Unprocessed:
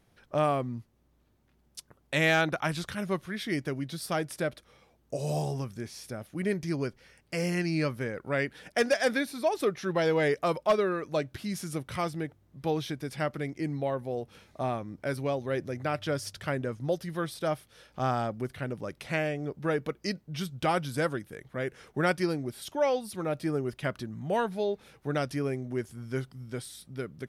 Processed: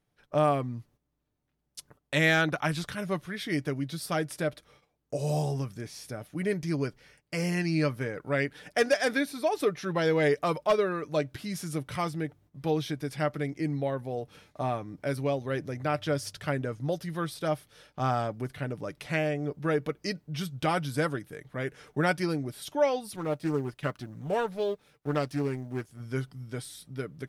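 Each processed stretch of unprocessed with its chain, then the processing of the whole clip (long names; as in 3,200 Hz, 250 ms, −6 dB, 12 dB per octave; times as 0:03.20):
0:23.16–0:26.00: mu-law and A-law mismatch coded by A + highs frequency-modulated by the lows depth 0.2 ms
whole clip: noise gate −58 dBFS, range −12 dB; comb filter 6.8 ms, depth 35%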